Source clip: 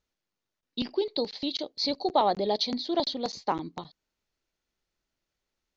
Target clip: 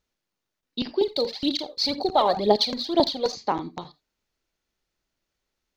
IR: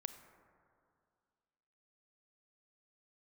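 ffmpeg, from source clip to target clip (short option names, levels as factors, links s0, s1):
-filter_complex "[1:a]atrim=start_sample=2205,afade=t=out:st=0.14:d=0.01,atrim=end_sample=6615[s0];[0:a][s0]afir=irnorm=-1:irlink=0,asettb=1/sr,asplit=3[s1][s2][s3];[s1]atrim=end=1.014[s4];[s2]atrim=start=1.01:end=3.34,asetpts=PTS-STARTPTS,afade=t=in:d=0.004:c=qsin,afade=t=out:st=2.326:d=0.004:c=qsin,aphaser=in_gain=1:out_gain=1:delay=2.1:decay=0.63:speed=2:type=triangular[s5];[s3]atrim=start=3.336[s6];[s4][s5]acrossfade=d=0.004:c1=hsin:c2=qsin[s7];[s7][s6]acrossfade=d=0.004:c1=qsin:c2=hsin,volume=2.11"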